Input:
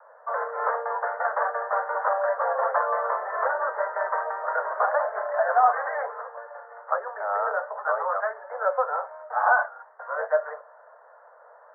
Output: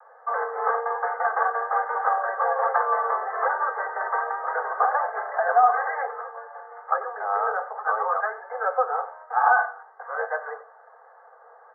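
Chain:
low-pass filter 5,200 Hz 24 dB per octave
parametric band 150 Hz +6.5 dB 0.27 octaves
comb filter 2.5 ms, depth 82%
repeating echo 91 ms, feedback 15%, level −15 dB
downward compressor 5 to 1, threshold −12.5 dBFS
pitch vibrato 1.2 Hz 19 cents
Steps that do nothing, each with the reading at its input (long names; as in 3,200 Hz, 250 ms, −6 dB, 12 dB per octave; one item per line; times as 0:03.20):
low-pass filter 5,200 Hz: nothing at its input above 2,000 Hz
parametric band 150 Hz: nothing at its input below 380 Hz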